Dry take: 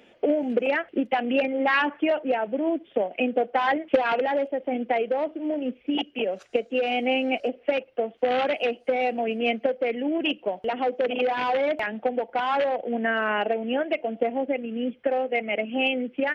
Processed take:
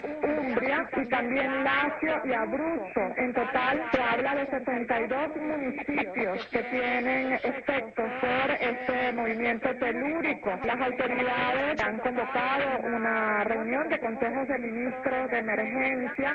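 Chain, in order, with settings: nonlinear frequency compression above 1400 Hz 1.5:1; pre-echo 0.196 s -15 dB; spectral compressor 2:1; gain -3.5 dB

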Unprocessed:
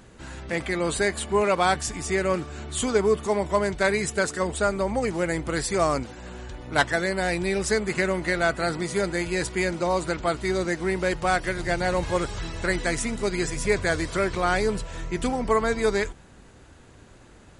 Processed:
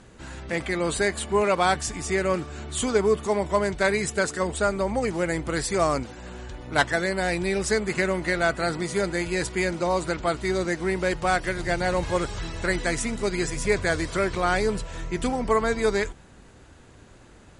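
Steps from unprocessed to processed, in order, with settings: steep low-pass 11000 Hz

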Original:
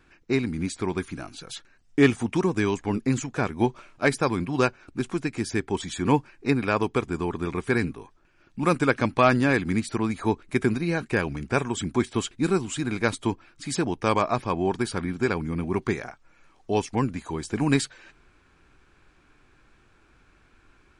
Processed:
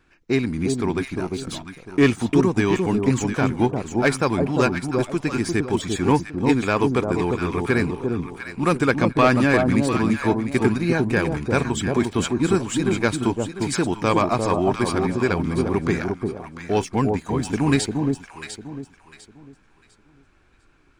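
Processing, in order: sample leveller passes 1; echo with dull and thin repeats by turns 0.35 s, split 910 Hz, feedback 51%, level -3 dB

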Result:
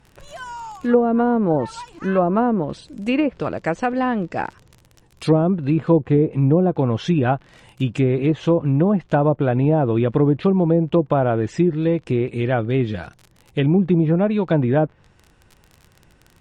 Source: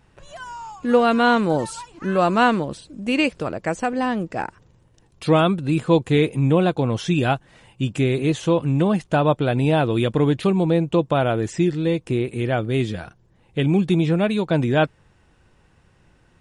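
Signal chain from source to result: crackle 37/s -33 dBFS; treble ducked by the level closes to 570 Hz, closed at -12.5 dBFS; gain +2 dB

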